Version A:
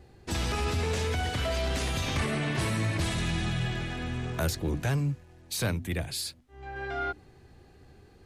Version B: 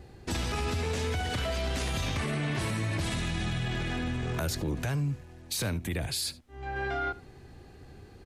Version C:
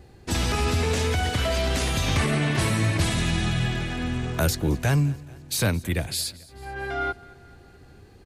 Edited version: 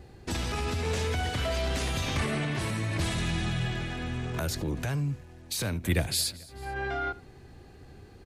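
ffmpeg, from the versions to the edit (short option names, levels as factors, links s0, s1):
-filter_complex "[0:a]asplit=2[s0][s1];[1:a]asplit=4[s2][s3][s4][s5];[s2]atrim=end=0.852[s6];[s0]atrim=start=0.848:end=2.452[s7];[s3]atrim=start=2.448:end=2.962[s8];[s1]atrim=start=2.958:end=4.342[s9];[s4]atrim=start=4.338:end=5.842[s10];[2:a]atrim=start=5.838:end=6.742[s11];[s5]atrim=start=6.738[s12];[s6][s7]acrossfade=d=0.004:c1=hsin:c2=hsin[s13];[s13][s8]acrossfade=d=0.004:c1=hsin:c2=hsin[s14];[s14][s9]acrossfade=d=0.004:c1=hsin:c2=hsin[s15];[s15][s10]acrossfade=d=0.004:c1=hsin:c2=hsin[s16];[s16][s11]acrossfade=d=0.004:c1=hsin:c2=hsin[s17];[s17][s12]acrossfade=d=0.004:c1=hsin:c2=hsin"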